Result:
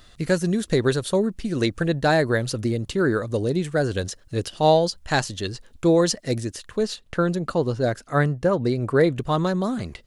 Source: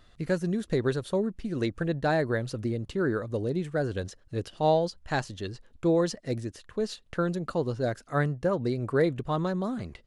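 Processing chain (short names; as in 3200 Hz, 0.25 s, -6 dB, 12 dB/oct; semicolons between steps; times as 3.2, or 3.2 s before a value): high shelf 3500 Hz +9.5 dB, from 6.83 s +2 dB, from 9.14 s +7.5 dB; gain +6 dB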